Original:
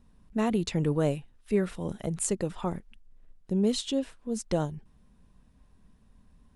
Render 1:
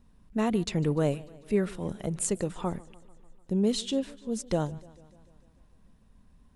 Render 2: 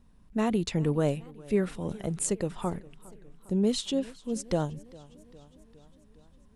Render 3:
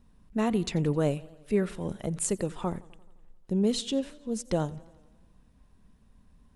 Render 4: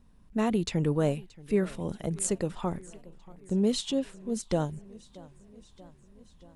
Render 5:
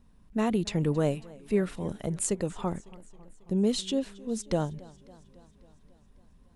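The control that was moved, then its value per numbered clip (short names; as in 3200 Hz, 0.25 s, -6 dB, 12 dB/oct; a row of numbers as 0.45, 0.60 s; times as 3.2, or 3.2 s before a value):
warbling echo, time: 148, 408, 87, 630, 274 ms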